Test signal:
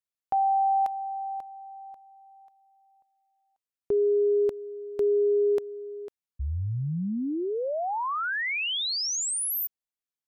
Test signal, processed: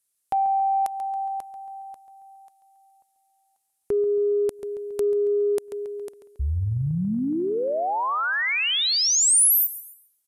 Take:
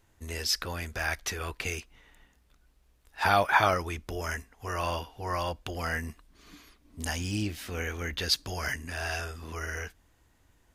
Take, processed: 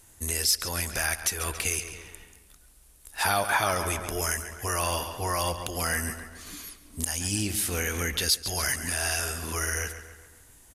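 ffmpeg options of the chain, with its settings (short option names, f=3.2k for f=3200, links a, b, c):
-filter_complex "[0:a]asplit=2[a][b];[b]adelay=138,lowpass=f=4.8k:p=1,volume=-12.5dB,asplit=2[c][d];[d]adelay=138,lowpass=f=4.8k:p=1,volume=0.52,asplit=2[e][f];[f]adelay=138,lowpass=f=4.8k:p=1,volume=0.52,asplit=2[g][h];[h]adelay=138,lowpass=f=4.8k:p=1,volume=0.52,asplit=2[i][j];[j]adelay=138,lowpass=f=4.8k:p=1,volume=0.52[k];[a][c][e][g][i][k]amix=inputs=6:normalize=0,aresample=32000,aresample=44100,equalizer=f=9.9k:w=0.92:g=14.5,acontrast=41,highshelf=f=5.1k:g=6,acompressor=threshold=-21dB:ratio=2.5:attack=0.66:release=292:knee=1:detection=rms"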